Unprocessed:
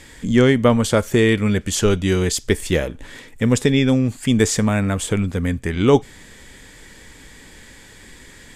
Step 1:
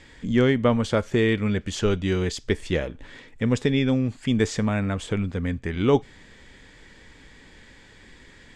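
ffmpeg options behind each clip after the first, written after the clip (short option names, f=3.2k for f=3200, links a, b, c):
-af "lowpass=4.8k,volume=-5.5dB"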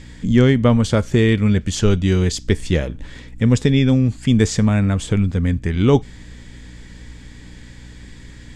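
-af "bass=f=250:g=8,treble=f=4k:g=7,aeval=exprs='val(0)+0.00891*(sin(2*PI*60*n/s)+sin(2*PI*2*60*n/s)/2+sin(2*PI*3*60*n/s)/3+sin(2*PI*4*60*n/s)/4+sin(2*PI*5*60*n/s)/5)':c=same,volume=2.5dB"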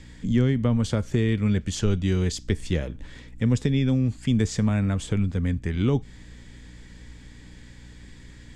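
-filter_complex "[0:a]acrossover=split=270[a][b];[b]acompressor=threshold=-20dB:ratio=6[c];[a][c]amix=inputs=2:normalize=0,volume=-6.5dB"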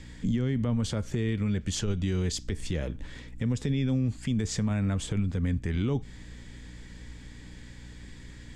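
-af "alimiter=limit=-19.5dB:level=0:latency=1:release=77"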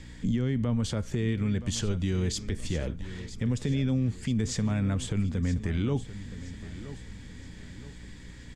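-af "aecho=1:1:972|1944|2916|3888:0.2|0.0838|0.0352|0.0148"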